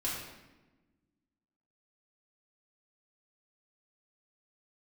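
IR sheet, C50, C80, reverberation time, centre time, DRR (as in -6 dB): 1.0 dB, 3.5 dB, 1.1 s, 65 ms, -7.0 dB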